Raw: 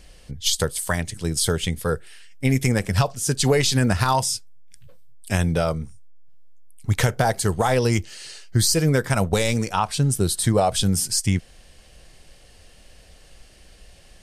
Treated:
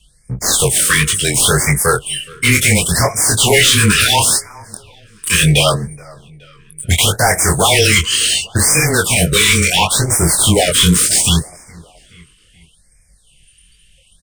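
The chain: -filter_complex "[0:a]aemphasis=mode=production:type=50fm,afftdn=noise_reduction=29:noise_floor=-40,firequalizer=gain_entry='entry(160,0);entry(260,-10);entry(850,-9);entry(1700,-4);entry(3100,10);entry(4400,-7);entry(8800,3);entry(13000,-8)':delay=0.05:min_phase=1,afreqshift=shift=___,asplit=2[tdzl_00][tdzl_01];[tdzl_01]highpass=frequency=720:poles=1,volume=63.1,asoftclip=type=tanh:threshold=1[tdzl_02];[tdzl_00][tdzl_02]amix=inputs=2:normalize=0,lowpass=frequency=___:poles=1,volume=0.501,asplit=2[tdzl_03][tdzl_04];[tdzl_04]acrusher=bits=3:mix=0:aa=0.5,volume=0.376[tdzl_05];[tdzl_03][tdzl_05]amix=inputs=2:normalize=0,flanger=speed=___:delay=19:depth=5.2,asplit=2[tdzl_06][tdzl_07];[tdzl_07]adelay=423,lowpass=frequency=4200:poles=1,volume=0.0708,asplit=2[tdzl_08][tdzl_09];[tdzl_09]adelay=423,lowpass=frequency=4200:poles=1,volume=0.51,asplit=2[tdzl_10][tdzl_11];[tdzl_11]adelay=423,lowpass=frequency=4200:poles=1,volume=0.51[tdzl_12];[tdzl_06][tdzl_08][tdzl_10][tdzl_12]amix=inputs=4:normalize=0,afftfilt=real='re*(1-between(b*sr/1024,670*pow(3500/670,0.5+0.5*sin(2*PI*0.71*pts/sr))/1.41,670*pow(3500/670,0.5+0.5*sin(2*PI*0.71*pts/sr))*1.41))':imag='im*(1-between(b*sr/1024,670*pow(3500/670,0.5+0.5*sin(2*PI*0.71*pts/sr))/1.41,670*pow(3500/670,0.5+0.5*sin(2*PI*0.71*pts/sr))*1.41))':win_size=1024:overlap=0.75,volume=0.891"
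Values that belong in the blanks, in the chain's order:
-18, 4600, 1.8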